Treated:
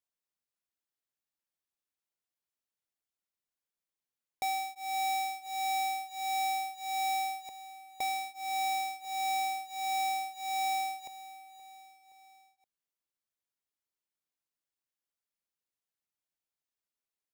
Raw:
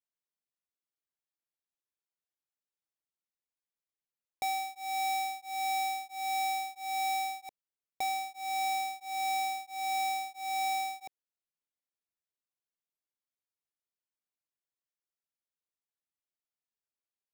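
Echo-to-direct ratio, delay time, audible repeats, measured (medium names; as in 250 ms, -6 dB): -15.5 dB, 522 ms, 3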